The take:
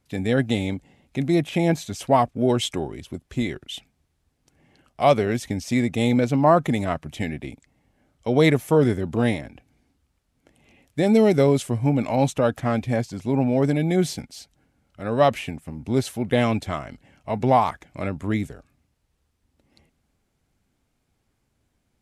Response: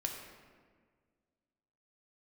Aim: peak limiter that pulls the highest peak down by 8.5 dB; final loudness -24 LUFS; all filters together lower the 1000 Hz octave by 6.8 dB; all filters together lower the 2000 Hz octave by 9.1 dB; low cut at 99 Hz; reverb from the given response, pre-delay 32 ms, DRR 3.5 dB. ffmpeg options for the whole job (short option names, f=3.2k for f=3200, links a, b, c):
-filter_complex "[0:a]highpass=99,equalizer=f=1k:t=o:g=-8.5,equalizer=f=2k:t=o:g=-8.5,alimiter=limit=-16dB:level=0:latency=1,asplit=2[a][b];[1:a]atrim=start_sample=2205,adelay=32[c];[b][c]afir=irnorm=-1:irlink=0,volume=-5dB[d];[a][d]amix=inputs=2:normalize=0,volume=2.5dB"